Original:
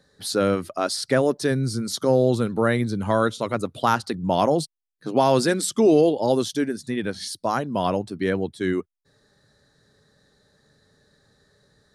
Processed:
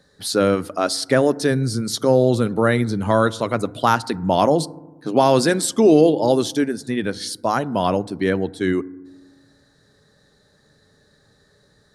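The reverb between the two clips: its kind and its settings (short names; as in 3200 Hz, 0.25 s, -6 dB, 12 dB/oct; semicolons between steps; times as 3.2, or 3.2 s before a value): FDN reverb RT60 1.1 s, low-frequency decay 1.4×, high-frequency decay 0.25×, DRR 18.5 dB; gain +3.5 dB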